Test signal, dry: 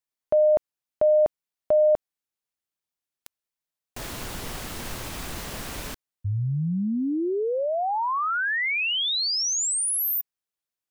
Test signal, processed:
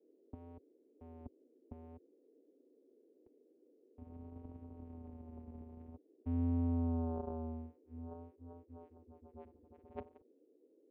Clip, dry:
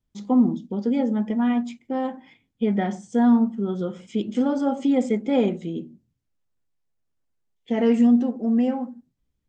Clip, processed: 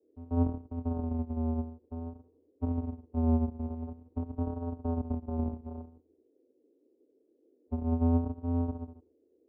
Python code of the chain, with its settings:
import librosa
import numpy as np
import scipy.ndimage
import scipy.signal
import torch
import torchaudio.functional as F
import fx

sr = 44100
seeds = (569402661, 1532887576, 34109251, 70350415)

y = fx.bit_reversed(x, sr, seeds[0], block=64)
y = scipy.signal.sosfilt(scipy.signal.cheby1(6, 1.0, 760.0, 'lowpass', fs=sr, output='sos'), y)
y = fx.vocoder(y, sr, bands=4, carrier='square', carrier_hz=82.7)
y = fx.vibrato(y, sr, rate_hz=0.5, depth_cents=56.0)
y = fx.dmg_noise_band(y, sr, seeds[1], low_hz=260.0, high_hz=490.0, level_db=-62.0)
y = y * 10.0 ** (-6.5 / 20.0)